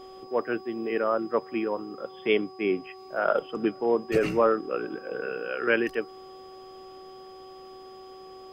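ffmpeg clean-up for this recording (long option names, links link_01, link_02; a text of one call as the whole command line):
ffmpeg -i in.wav -af "bandreject=frequency=377.5:width_type=h:width=4,bandreject=frequency=755:width_type=h:width=4,bandreject=frequency=1132.5:width_type=h:width=4,bandreject=frequency=5000:width=30" out.wav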